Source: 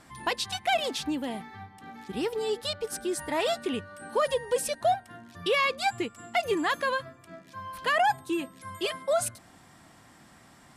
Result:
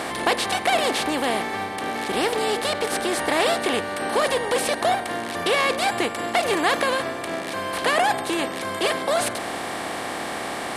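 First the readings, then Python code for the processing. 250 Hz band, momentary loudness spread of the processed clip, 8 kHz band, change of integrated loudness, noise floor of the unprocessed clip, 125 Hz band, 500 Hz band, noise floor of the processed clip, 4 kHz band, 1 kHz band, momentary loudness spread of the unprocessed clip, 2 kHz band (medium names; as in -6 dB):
+6.5 dB, 8 LU, +7.5 dB, +6.0 dB, -55 dBFS, +6.5 dB, +6.0 dB, -30 dBFS, +7.5 dB, +6.5 dB, 16 LU, +8.0 dB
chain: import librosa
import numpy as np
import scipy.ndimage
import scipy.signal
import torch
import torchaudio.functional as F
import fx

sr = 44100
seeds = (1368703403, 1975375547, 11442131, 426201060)

y = fx.bin_compress(x, sr, power=0.4)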